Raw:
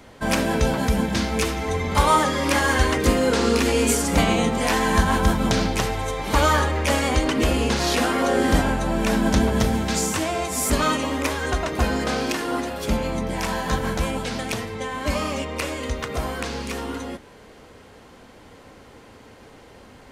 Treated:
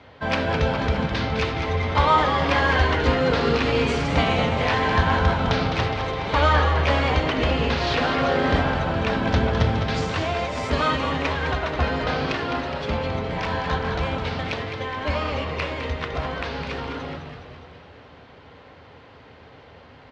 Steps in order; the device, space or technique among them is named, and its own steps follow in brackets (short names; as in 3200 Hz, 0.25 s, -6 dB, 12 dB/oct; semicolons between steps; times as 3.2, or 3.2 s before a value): frequency-shifting delay pedal into a guitar cabinet (frequency-shifting echo 0.208 s, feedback 62%, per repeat -110 Hz, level -7.5 dB; speaker cabinet 79–4200 Hz, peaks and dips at 80 Hz +7 dB, 210 Hz -8 dB, 340 Hz -7 dB)